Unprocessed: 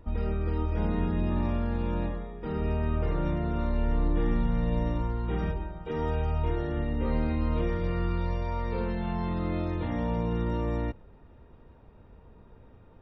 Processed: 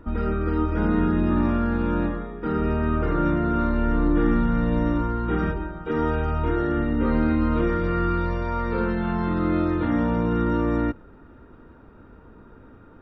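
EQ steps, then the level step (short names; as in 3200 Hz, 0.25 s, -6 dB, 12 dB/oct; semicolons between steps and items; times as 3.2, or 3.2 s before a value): bell 290 Hz +10.5 dB 0.95 oct; bell 1400 Hz +14 dB 0.57 oct; +2.0 dB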